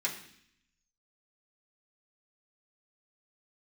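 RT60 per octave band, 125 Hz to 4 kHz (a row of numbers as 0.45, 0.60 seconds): 0.95, 0.95, 0.65, 0.65, 0.80, 0.80 seconds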